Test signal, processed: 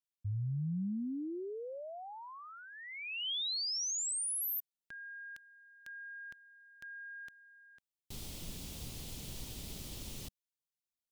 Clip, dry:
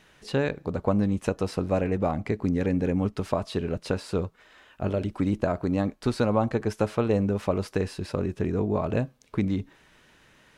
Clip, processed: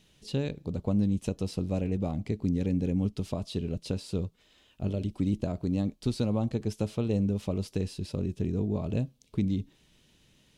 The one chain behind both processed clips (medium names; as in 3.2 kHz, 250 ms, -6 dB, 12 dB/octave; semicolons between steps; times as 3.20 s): FFT filter 190 Hz 0 dB, 1.6 kHz -17 dB, 3.2 kHz -1 dB; trim -1 dB